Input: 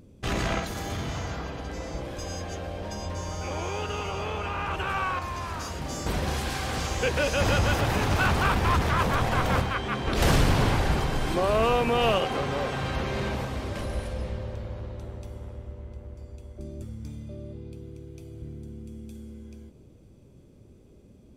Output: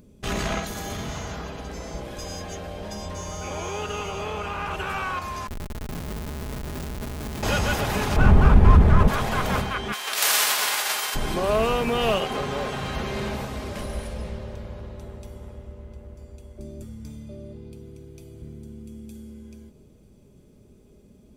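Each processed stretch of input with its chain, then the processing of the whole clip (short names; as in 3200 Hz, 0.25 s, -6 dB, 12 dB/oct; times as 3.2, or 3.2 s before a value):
5.47–7.43 Chebyshev band-stop 360–3400 Hz, order 4 + Schmitt trigger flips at -31 dBFS
8.16–9.08 median filter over 9 samples + tilt -3.5 dB/oct
9.92–11.14 spectral whitening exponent 0.6 + HPF 900 Hz
whole clip: high shelf 8500 Hz +7.5 dB; comb 4.8 ms, depth 35%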